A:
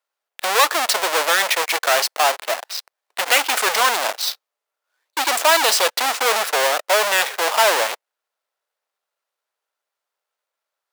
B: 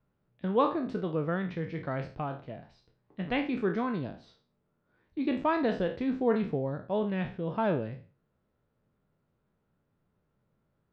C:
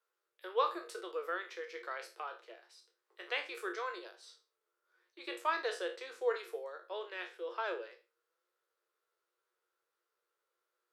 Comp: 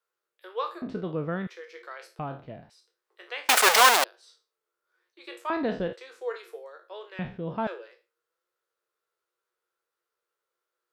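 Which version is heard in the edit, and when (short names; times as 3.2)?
C
0.82–1.47 from B
2.19–2.7 from B
3.49–4.04 from A
5.5–5.93 from B
7.19–7.67 from B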